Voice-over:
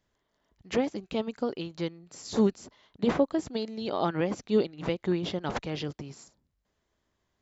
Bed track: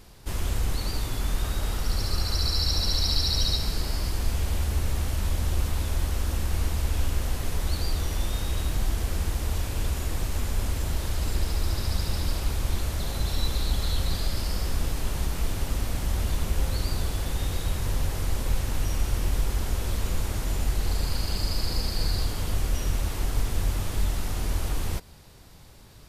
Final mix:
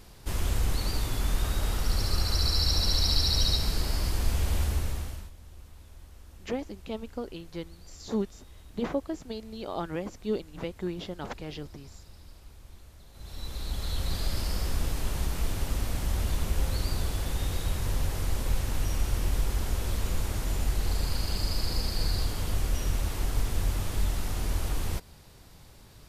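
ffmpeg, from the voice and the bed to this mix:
-filter_complex "[0:a]adelay=5750,volume=-5.5dB[a];[1:a]volume=20.5dB,afade=t=out:st=4.62:d=0.69:silence=0.0749894,afade=t=in:st=13.12:d=1.21:silence=0.0891251[b];[a][b]amix=inputs=2:normalize=0"

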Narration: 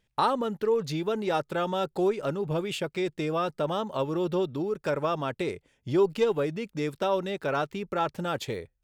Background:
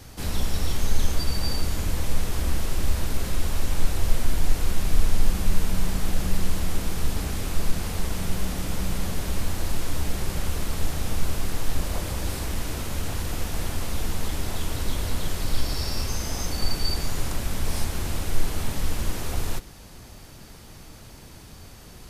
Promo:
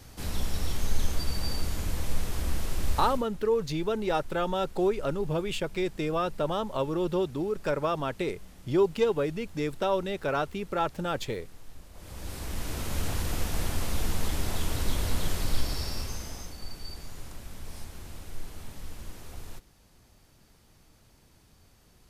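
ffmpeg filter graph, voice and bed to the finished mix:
-filter_complex "[0:a]adelay=2800,volume=-0.5dB[a];[1:a]volume=16dB,afade=t=out:st=2.99:d=0.27:silence=0.133352,afade=t=in:st=11.94:d=1.06:silence=0.0891251,afade=t=out:st=15.32:d=1.24:silence=0.211349[b];[a][b]amix=inputs=2:normalize=0"

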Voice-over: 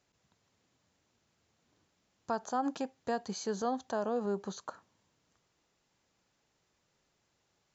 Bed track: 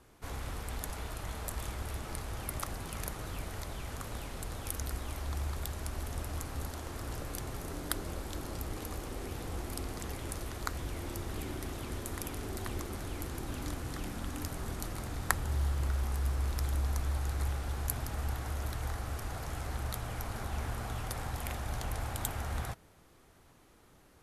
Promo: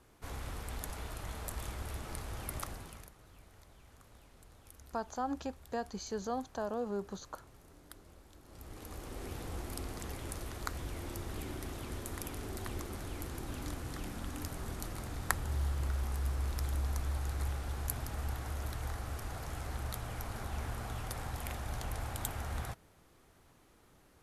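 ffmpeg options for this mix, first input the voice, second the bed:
-filter_complex "[0:a]adelay=2650,volume=-3.5dB[a];[1:a]volume=13.5dB,afade=t=out:st=2.59:d=0.51:silence=0.158489,afade=t=in:st=8.44:d=0.84:silence=0.158489[b];[a][b]amix=inputs=2:normalize=0"

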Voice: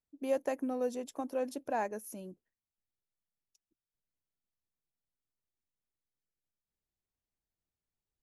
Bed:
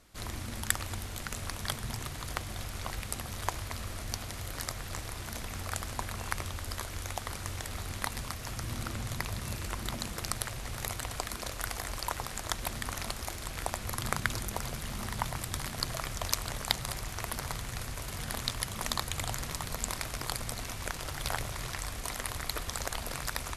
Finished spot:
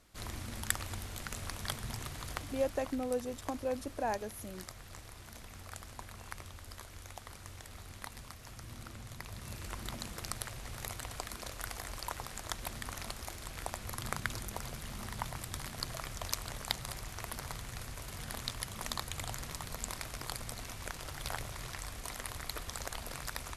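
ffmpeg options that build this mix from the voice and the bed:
-filter_complex "[0:a]adelay=2300,volume=-1dB[a];[1:a]volume=2dB,afade=t=out:st=2.24:d=0.74:silence=0.421697,afade=t=in:st=9.19:d=0.56:silence=0.530884[b];[a][b]amix=inputs=2:normalize=0"

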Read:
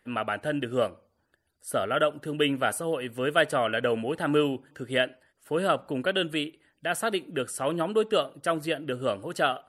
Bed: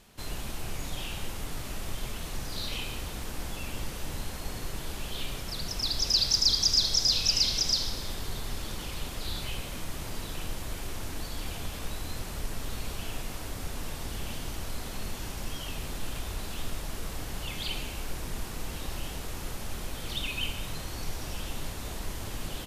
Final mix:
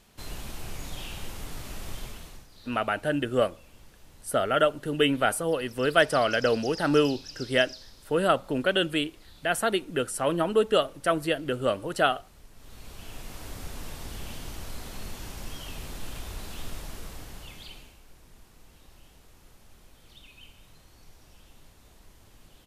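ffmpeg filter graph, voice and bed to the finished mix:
-filter_complex "[0:a]adelay=2600,volume=2dB[a];[1:a]volume=13.5dB,afade=t=out:st=1.96:d=0.51:silence=0.158489,afade=t=in:st=12.54:d=0.97:silence=0.16788,afade=t=out:st=16.79:d=1.2:silence=0.158489[b];[a][b]amix=inputs=2:normalize=0"

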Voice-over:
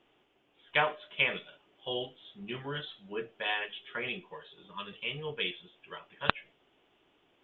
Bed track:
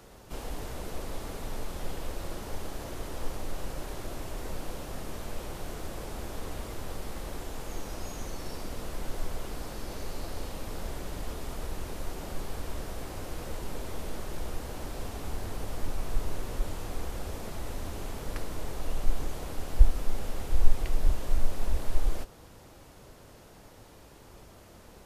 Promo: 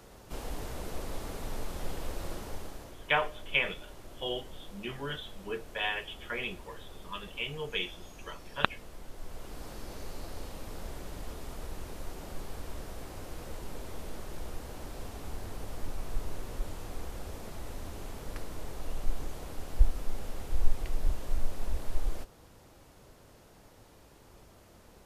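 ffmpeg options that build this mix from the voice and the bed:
-filter_complex "[0:a]adelay=2350,volume=0dB[a];[1:a]volume=5.5dB,afade=t=out:st=2.31:d=0.66:silence=0.316228,afade=t=in:st=9.16:d=0.54:silence=0.473151[b];[a][b]amix=inputs=2:normalize=0"

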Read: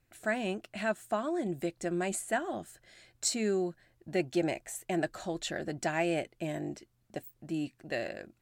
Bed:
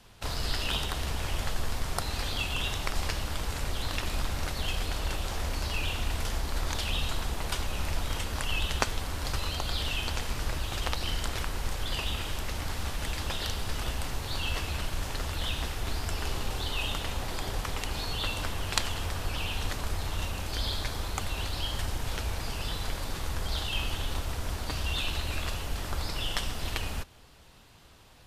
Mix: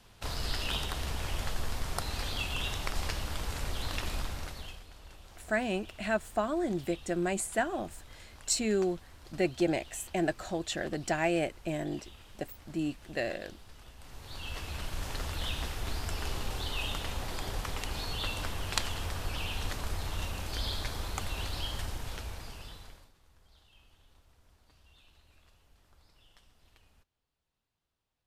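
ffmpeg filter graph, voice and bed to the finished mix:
-filter_complex "[0:a]adelay=5250,volume=1.5dB[a];[1:a]volume=14dB,afade=t=out:st=4.08:d=0.75:silence=0.141254,afade=t=in:st=13.97:d=1.16:silence=0.141254,afade=t=out:st=21.57:d=1.55:silence=0.0398107[b];[a][b]amix=inputs=2:normalize=0"

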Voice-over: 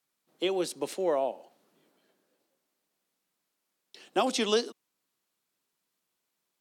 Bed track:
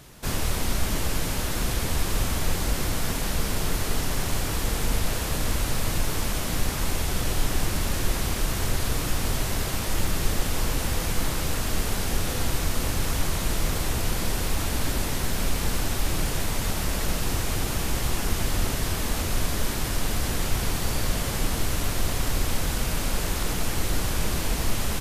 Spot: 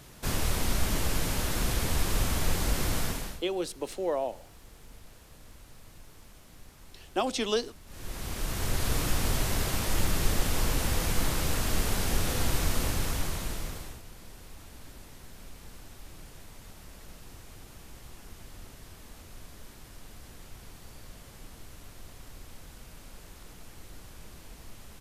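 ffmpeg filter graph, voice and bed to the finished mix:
-filter_complex "[0:a]adelay=3000,volume=-2dB[a];[1:a]volume=21.5dB,afade=t=out:st=2.99:d=0.43:silence=0.0668344,afade=t=in:st=7.86:d=1.1:silence=0.0630957,afade=t=out:st=12.72:d=1.3:silence=0.1[b];[a][b]amix=inputs=2:normalize=0"

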